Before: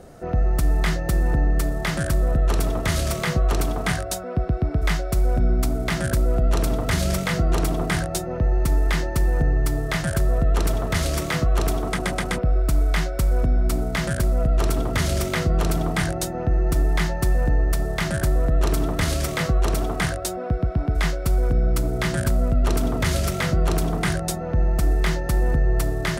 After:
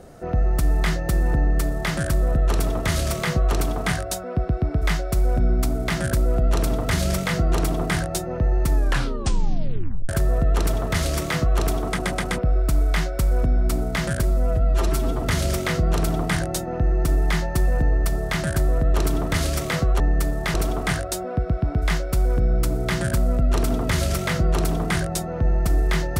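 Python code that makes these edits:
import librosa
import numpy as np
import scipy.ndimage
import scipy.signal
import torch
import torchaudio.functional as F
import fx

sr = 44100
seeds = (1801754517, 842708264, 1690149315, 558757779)

y = fx.edit(x, sr, fx.duplicate(start_s=1.39, length_s=0.54, to_s=19.67),
    fx.tape_stop(start_s=8.73, length_s=1.36),
    fx.stretch_span(start_s=14.23, length_s=0.66, factor=1.5), tone=tone)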